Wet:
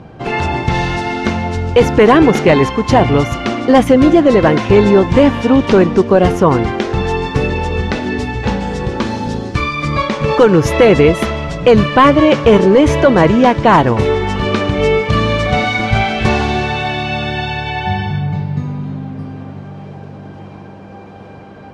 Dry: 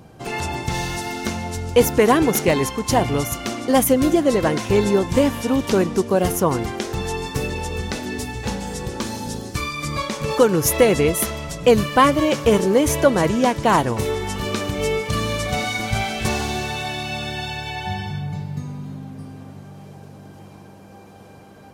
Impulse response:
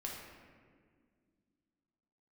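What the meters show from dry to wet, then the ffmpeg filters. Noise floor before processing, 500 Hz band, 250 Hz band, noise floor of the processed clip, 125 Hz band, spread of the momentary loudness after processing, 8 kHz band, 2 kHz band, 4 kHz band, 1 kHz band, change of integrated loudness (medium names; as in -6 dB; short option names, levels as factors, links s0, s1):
-43 dBFS, +8.0 dB, +8.5 dB, -34 dBFS, +9.0 dB, 11 LU, -6.5 dB, +8.0 dB, +5.0 dB, +8.0 dB, +8.0 dB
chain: -af "lowpass=3100,apsyclip=3.55,volume=0.841"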